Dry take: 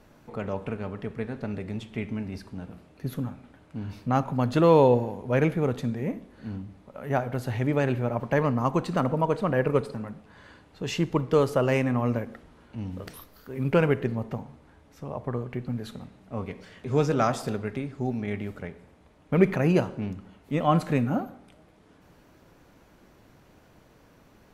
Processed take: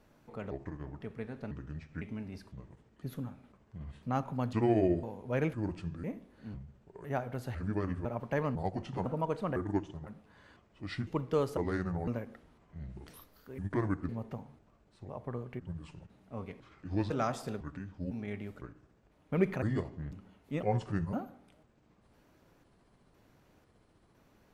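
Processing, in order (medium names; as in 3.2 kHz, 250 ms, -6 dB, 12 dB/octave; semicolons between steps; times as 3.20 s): pitch shift switched off and on -6 st, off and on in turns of 503 ms; endings held to a fixed fall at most 510 dB/s; trim -8.5 dB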